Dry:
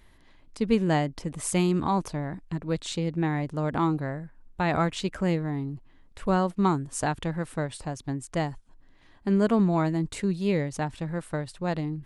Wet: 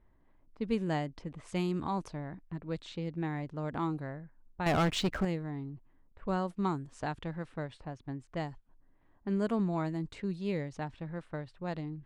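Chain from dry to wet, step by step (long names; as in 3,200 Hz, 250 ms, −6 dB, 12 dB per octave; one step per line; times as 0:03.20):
low-pass that shuts in the quiet parts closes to 1,100 Hz, open at −21 dBFS
0:04.66–0:05.25: leveller curve on the samples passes 3
level −8.5 dB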